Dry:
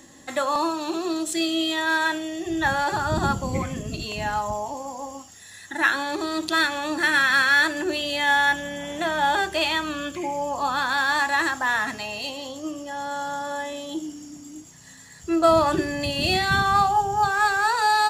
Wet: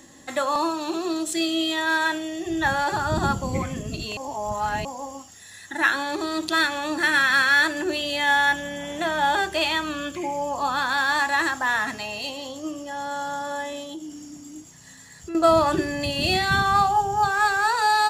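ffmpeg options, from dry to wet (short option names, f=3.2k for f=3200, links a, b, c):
-filter_complex "[0:a]asettb=1/sr,asplit=3[a][b][c];[a]atrim=end=13.834[d];[b]atrim=start=13.83:end=15.35,asetpts=PTS-STARTPTS,afade=t=in:d=0.004:c=qsin,afade=t=out:st=1.516:d=0.004:c=qsin,acompressor=threshold=-33dB:ratio=4:attack=3.2:release=140:knee=1:detection=peak[e];[c]atrim=start=15.346[f];[d][e]acrossfade=d=0.004:c1=hsin:c2=qsin[g];[g][f]acrossfade=d=0.004:c1=qsin:c2=hsin,asplit=3[h][i][j];[h]atrim=end=4.172[k];[i]atrim=start=4.168:end=4.852,asetpts=PTS-STARTPTS,areverse[l];[j]atrim=start=4.848[m];[k][l]acrossfade=d=0.004:c1=hsin:c2=hsin[n];[n][m]acrossfade=d=0.004:c1=hsin:c2=hsin"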